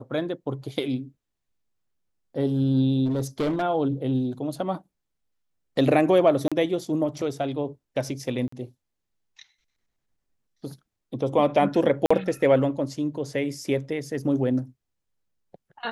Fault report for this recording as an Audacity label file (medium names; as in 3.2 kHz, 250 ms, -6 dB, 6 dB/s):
3.050000	3.630000	clipped -21 dBFS
6.480000	6.520000	dropout 36 ms
8.480000	8.520000	dropout 44 ms
12.060000	12.110000	dropout 45 ms